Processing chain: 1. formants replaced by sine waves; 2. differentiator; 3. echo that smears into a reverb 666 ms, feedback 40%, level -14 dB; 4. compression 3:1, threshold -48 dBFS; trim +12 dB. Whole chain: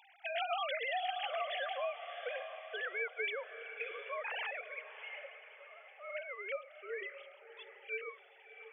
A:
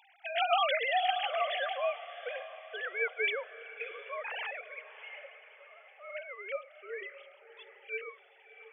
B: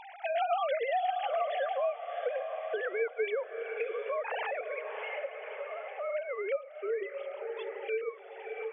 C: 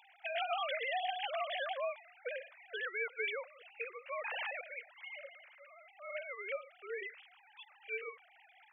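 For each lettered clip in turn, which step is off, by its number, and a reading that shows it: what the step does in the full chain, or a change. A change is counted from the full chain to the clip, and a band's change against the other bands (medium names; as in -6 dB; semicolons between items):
4, mean gain reduction 2.0 dB; 2, crest factor change -2.5 dB; 3, momentary loudness spread change +3 LU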